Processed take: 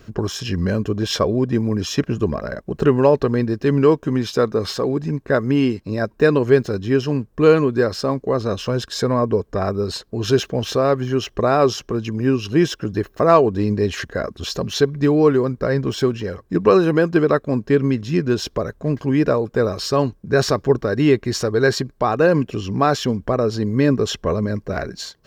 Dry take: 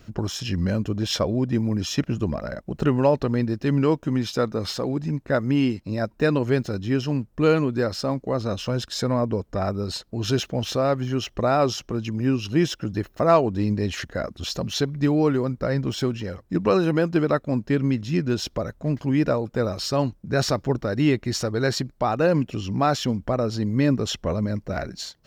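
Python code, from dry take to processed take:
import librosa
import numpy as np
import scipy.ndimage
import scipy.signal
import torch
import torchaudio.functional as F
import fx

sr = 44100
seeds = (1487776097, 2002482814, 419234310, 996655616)

y = fx.small_body(x, sr, hz=(420.0, 1100.0, 1600.0), ring_ms=30, db=8)
y = y * librosa.db_to_amplitude(2.5)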